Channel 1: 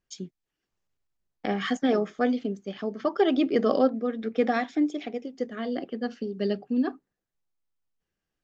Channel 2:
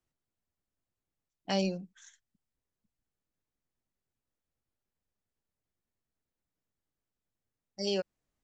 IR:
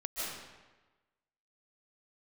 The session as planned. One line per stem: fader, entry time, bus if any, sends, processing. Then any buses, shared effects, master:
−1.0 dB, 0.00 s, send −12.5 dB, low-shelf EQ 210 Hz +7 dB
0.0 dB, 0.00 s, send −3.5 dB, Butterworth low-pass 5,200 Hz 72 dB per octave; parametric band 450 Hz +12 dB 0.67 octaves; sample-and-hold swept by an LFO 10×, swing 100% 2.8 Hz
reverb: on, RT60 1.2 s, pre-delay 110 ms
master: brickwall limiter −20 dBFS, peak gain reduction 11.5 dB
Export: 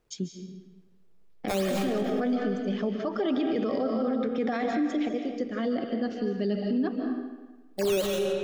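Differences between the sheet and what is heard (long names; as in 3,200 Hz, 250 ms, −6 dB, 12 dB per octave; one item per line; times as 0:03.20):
stem 1: send −12.5 dB → −6 dB
stem 2 0.0 dB → +7.5 dB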